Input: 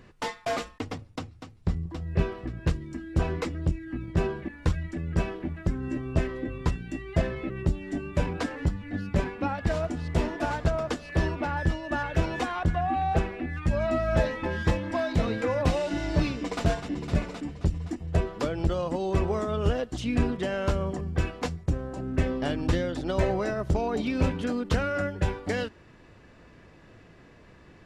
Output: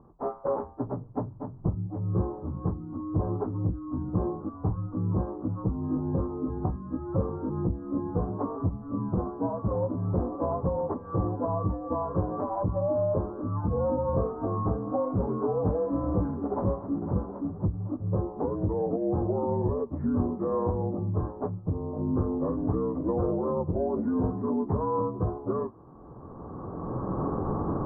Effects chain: inharmonic rescaling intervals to 79%; recorder AGC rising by 16 dB/s; elliptic low-pass 1100 Hz, stop band 70 dB

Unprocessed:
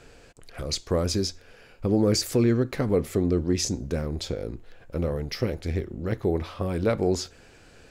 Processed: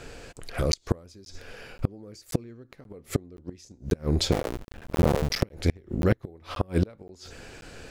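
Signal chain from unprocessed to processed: 4.32–5.43 cycle switcher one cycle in 2, muted; flipped gate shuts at -17 dBFS, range -31 dB; crackling interface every 0.53 s, samples 512, zero, from 0.72; gain +7.5 dB

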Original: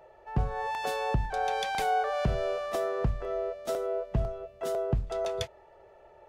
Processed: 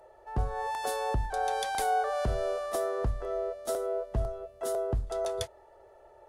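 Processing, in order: fifteen-band EQ 160 Hz -11 dB, 2500 Hz -8 dB, 10000 Hz +10 dB

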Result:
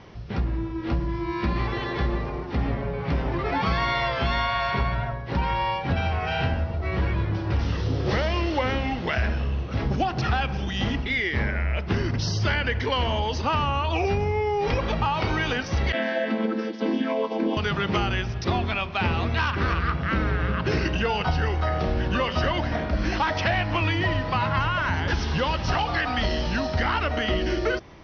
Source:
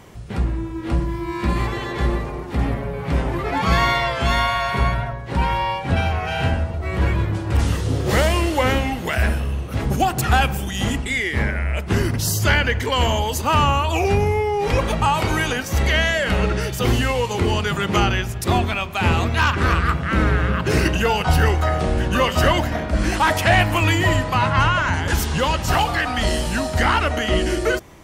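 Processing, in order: 15.92–17.57 chord vocoder minor triad, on A3; steep low-pass 5800 Hz 96 dB/oct; compressor, threshold -18 dBFS, peak gain reduction 7.5 dB; gain -2 dB

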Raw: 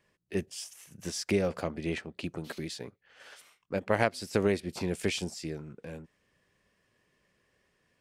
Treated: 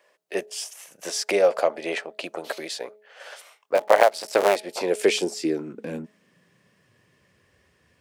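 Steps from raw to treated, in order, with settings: 3.75–4.56 cycle switcher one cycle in 3, muted; high-pass sweep 590 Hz -> 71 Hz, 4.65–7.58; de-hum 211.8 Hz, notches 4; gain +8 dB

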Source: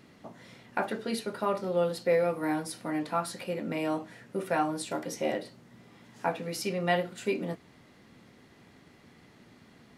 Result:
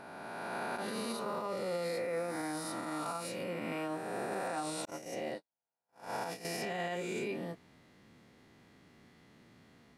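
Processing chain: spectral swells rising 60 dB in 2.53 s; 4.85–6.45 gate -27 dBFS, range -52 dB; limiter -20 dBFS, peak gain reduction 10.5 dB; gain -8.5 dB

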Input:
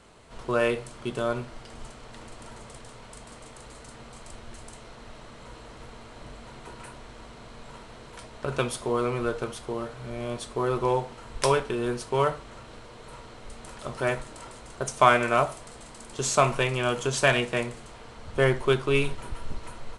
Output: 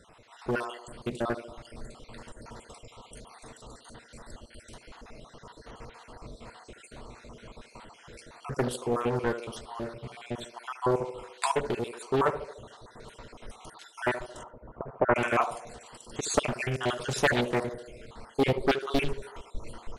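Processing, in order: random spectral dropouts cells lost 53%; 14.43–15.16 LPF 1300 Hz 24 dB/oct; narrowing echo 74 ms, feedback 61%, band-pass 510 Hz, level -9.5 dB; Doppler distortion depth 0.79 ms

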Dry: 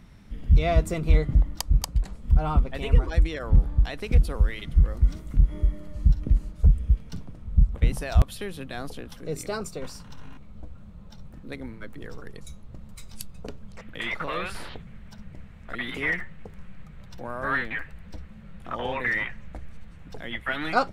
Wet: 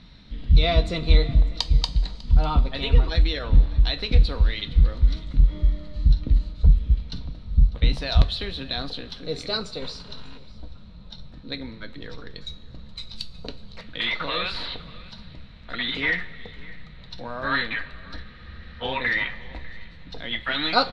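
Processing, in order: synth low-pass 4000 Hz, resonance Q 9; on a send: echo 0.598 s -21.5 dB; on the sum: two-slope reverb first 0.22 s, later 2.6 s, from -18 dB, DRR 7.5 dB; spectral freeze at 18.25, 0.57 s

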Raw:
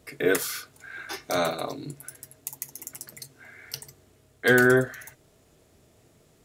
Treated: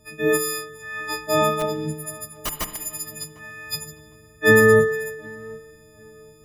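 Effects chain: frequency quantiser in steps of 6 st; 1.52–2.83 wrapped overs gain 16.5 dB; vocal rider within 3 dB 0.5 s; tilt -2.5 dB/oct; on a send at -11 dB: reverb RT60 1.3 s, pre-delay 34 ms; on the sum: dynamic EQ 3900 Hz, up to -3 dB, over -34 dBFS, Q 1; tape echo 0.753 s, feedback 35%, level -21 dB, low-pass 1300 Hz

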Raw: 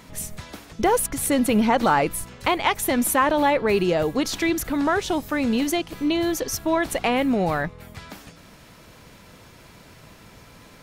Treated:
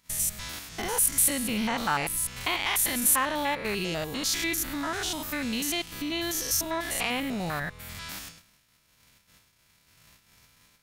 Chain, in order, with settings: stepped spectrum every 0.1 s; high shelf 9500 Hz +4.5 dB; in parallel at +3 dB: compressor, threshold -33 dBFS, peak gain reduction 15.5 dB; on the sum: gate -38 dBFS, range -24 dB; passive tone stack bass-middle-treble 5-5-5; gain +7 dB

